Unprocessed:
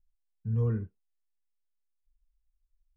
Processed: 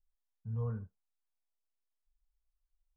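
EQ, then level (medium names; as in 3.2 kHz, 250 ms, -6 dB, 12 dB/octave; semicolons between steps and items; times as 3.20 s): tone controls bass -7 dB, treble -15 dB; static phaser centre 850 Hz, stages 4; 0.0 dB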